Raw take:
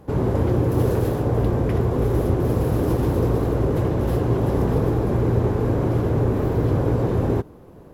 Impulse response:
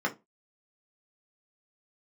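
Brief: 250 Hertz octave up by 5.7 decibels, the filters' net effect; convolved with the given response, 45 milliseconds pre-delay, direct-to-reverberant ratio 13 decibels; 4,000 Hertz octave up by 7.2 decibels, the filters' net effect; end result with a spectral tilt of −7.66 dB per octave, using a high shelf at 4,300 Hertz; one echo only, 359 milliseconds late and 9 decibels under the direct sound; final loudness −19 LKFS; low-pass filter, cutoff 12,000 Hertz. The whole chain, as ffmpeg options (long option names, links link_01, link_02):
-filter_complex "[0:a]lowpass=12000,equalizer=frequency=250:width_type=o:gain=7.5,equalizer=frequency=4000:width_type=o:gain=6,highshelf=frequency=4300:gain=6,aecho=1:1:359:0.355,asplit=2[link_01][link_02];[1:a]atrim=start_sample=2205,adelay=45[link_03];[link_02][link_03]afir=irnorm=-1:irlink=0,volume=-22dB[link_04];[link_01][link_04]amix=inputs=2:normalize=0,volume=-2dB"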